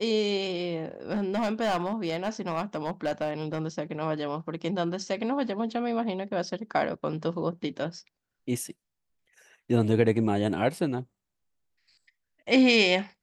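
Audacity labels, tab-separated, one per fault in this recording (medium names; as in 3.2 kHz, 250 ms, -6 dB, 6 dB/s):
1.110000	3.590000	clipped -22.5 dBFS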